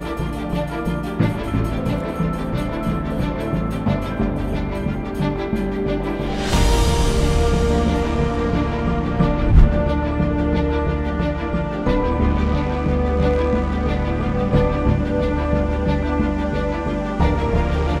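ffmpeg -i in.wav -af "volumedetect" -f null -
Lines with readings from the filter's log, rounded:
mean_volume: -18.8 dB
max_volume: -2.1 dB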